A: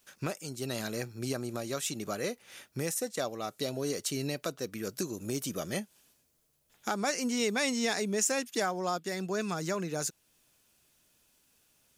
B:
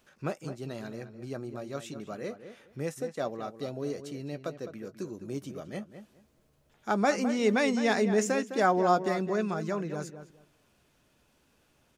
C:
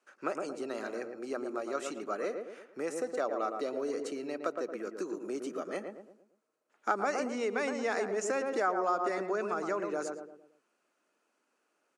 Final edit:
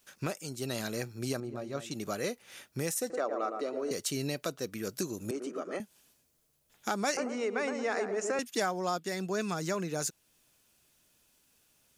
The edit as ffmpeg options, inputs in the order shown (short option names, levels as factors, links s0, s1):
-filter_complex "[2:a]asplit=3[s0][s1][s2];[0:a]asplit=5[s3][s4][s5][s6][s7];[s3]atrim=end=1.402[s8];[1:a]atrim=start=1.398:end=1.912[s9];[s4]atrim=start=1.908:end=3.102[s10];[s0]atrim=start=3.098:end=3.912[s11];[s5]atrim=start=3.908:end=5.312[s12];[s1]atrim=start=5.308:end=5.802[s13];[s6]atrim=start=5.798:end=7.172[s14];[s2]atrim=start=7.168:end=8.392[s15];[s7]atrim=start=8.388[s16];[s8][s9]acrossfade=d=0.004:c1=hsin:c2=hsin[s17];[s17][s10]acrossfade=d=0.004:c1=hsin:c2=hsin[s18];[s18][s11]acrossfade=d=0.004:c1=hsin:c2=hsin[s19];[s19][s12]acrossfade=d=0.004:c1=hsin:c2=hsin[s20];[s20][s13]acrossfade=d=0.004:c1=hsin:c2=hsin[s21];[s21][s14]acrossfade=d=0.004:c1=hsin:c2=hsin[s22];[s22][s15]acrossfade=d=0.004:c1=hsin:c2=hsin[s23];[s23][s16]acrossfade=d=0.004:c1=hsin:c2=hsin"